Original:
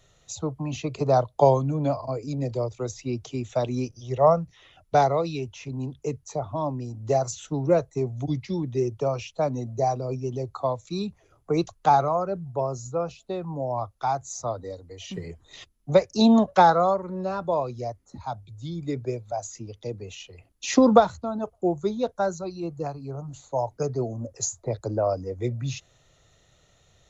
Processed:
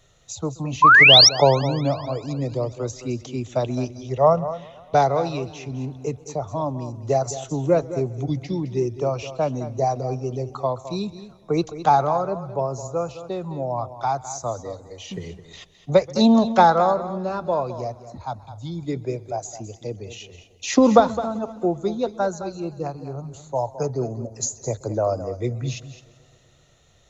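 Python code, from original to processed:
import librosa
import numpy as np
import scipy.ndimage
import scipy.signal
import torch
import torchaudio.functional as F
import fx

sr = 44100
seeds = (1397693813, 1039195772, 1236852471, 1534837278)

y = x + 10.0 ** (-13.0 / 20.0) * np.pad(x, (int(212 * sr / 1000.0), 0))[:len(x)]
y = fx.spec_paint(y, sr, seeds[0], shape='rise', start_s=0.82, length_s=0.47, low_hz=970.0, high_hz=5900.0, level_db=-12.0)
y = fx.echo_warbled(y, sr, ms=130, feedback_pct=72, rate_hz=2.8, cents=116, wet_db=-24.0)
y = y * librosa.db_to_amplitude(2.0)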